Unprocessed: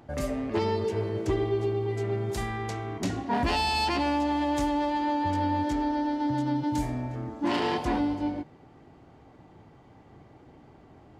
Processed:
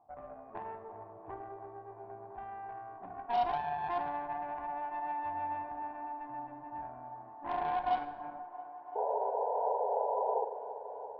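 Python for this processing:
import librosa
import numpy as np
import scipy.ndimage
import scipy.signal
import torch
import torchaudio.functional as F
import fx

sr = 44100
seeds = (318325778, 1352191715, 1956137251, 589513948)

y = fx.formant_cascade(x, sr, vowel='a')
y = fx.cheby_harmonics(y, sr, harmonics=(6, 7), levels_db=(-23, -27), full_scale_db=-25.0)
y = fx.spec_paint(y, sr, seeds[0], shape='noise', start_s=8.95, length_s=1.5, low_hz=400.0, high_hz=1000.0, level_db=-36.0)
y = fx.echo_wet_bandpass(y, sr, ms=337, feedback_pct=84, hz=670.0, wet_db=-14.0)
y = fx.rev_schroeder(y, sr, rt60_s=0.81, comb_ms=33, drr_db=10.0)
y = y * 10.0 ** (3.0 / 20.0)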